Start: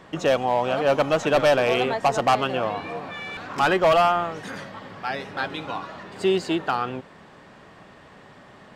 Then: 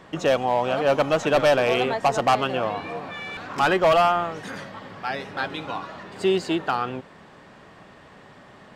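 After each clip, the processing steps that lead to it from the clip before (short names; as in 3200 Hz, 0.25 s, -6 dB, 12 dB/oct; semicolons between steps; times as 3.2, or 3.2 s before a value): nothing audible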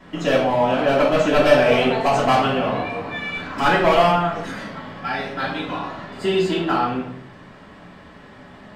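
reverb RT60 0.65 s, pre-delay 3 ms, DRR -9 dB; gain -10 dB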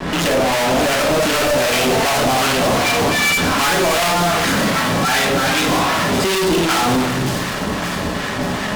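fuzz box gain 41 dB, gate -50 dBFS; harmonic tremolo 2.6 Hz, depth 50%, crossover 960 Hz; on a send: thin delay 0.574 s, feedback 63%, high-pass 3600 Hz, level -5.5 dB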